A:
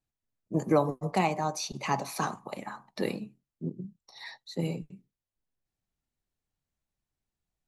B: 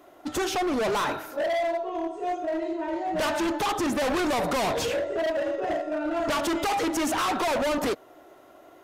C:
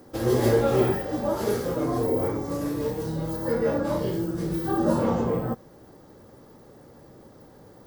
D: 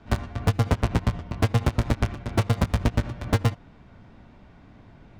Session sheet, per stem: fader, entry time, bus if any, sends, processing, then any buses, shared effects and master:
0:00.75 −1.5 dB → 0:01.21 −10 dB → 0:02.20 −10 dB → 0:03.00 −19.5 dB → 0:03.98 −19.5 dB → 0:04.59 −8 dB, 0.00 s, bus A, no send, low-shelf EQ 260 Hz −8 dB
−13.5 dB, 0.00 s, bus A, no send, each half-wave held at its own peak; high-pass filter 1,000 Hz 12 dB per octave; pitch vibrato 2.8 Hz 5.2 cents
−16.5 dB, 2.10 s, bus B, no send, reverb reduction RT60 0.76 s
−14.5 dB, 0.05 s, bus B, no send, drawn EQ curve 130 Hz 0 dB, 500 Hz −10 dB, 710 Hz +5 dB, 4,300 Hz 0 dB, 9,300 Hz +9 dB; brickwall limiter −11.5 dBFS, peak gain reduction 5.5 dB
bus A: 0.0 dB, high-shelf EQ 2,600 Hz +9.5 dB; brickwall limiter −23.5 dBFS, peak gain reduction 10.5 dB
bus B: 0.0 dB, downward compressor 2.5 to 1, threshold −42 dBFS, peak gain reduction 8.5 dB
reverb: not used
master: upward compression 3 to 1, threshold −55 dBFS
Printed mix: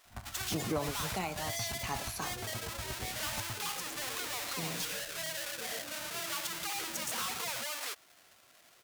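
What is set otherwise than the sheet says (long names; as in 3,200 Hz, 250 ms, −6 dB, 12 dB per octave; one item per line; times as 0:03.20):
stem A: missing low-shelf EQ 260 Hz −8 dB
stem C −16.5 dB → −23.5 dB
master: missing upward compression 3 to 1, threshold −55 dBFS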